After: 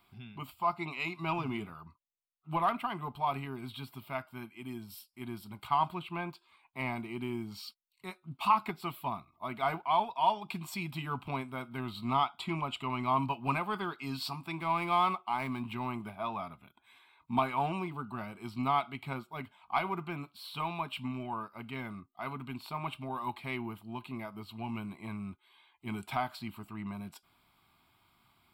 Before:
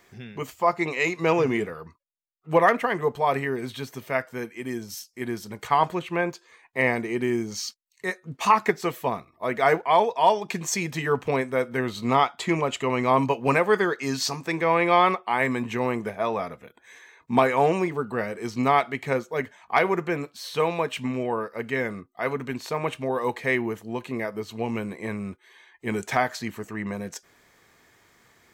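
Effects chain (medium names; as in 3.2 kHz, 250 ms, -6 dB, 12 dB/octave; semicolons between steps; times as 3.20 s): 14.61–15.72 s: median filter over 9 samples; in parallel at -11 dB: saturation -22 dBFS, distortion -8 dB; on the sum: static phaser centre 1.8 kHz, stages 6; trim -7.5 dB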